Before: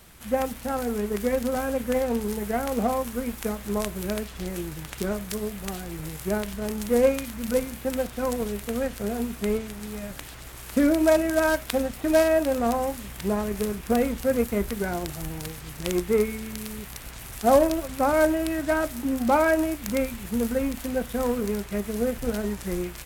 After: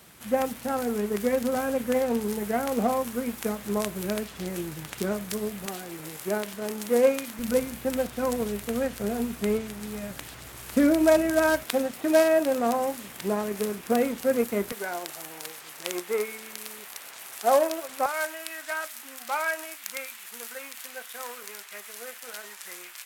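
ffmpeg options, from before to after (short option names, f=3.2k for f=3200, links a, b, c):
-af "asetnsamples=n=441:p=0,asendcmd='5.66 highpass f 260;7.39 highpass f 81;11.63 highpass f 220;14.72 highpass f 550;18.06 highpass f 1300',highpass=120"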